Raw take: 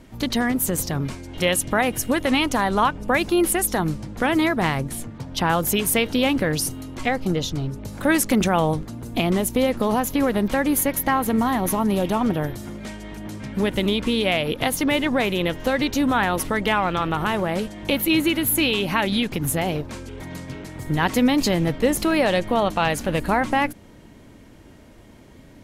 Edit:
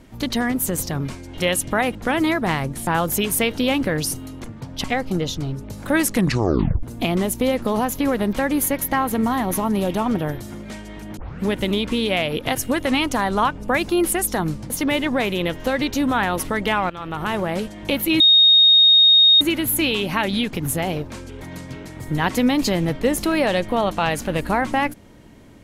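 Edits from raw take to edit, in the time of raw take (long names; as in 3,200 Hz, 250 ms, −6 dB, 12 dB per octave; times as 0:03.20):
0:01.95–0:04.10: move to 0:14.70
0:05.02–0:05.42: move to 0:06.99
0:08.27: tape stop 0.71 s
0:13.32: tape start 0.25 s
0:16.90–0:17.35: fade in, from −15.5 dB
0:18.20: insert tone 3,720 Hz −9 dBFS 1.21 s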